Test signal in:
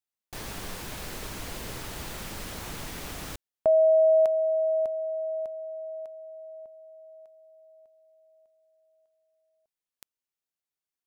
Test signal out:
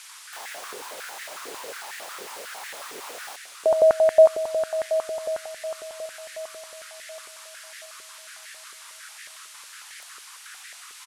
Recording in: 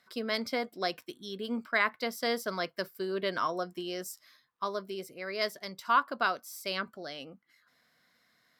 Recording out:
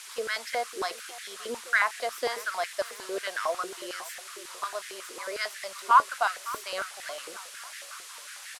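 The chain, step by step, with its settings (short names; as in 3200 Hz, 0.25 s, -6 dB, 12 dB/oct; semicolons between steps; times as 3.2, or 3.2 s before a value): feedback echo 0.565 s, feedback 51%, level -17 dB; band noise 1100–11000 Hz -43 dBFS; stepped high-pass 11 Hz 410–1800 Hz; gain -2.5 dB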